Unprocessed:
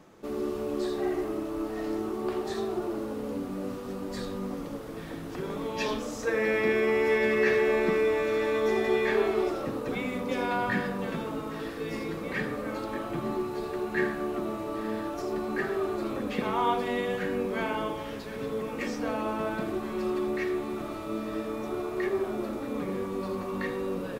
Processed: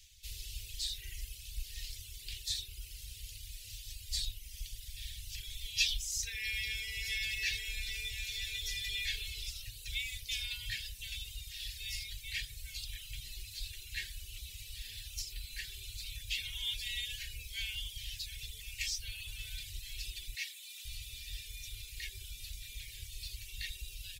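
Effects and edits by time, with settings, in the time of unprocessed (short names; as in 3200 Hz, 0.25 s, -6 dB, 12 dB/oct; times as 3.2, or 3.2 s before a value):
20.34–20.85 HPF 610 Hz
whole clip: inverse Chebyshev band-stop 170–1300 Hz, stop band 50 dB; reverb removal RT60 1 s; gain +10 dB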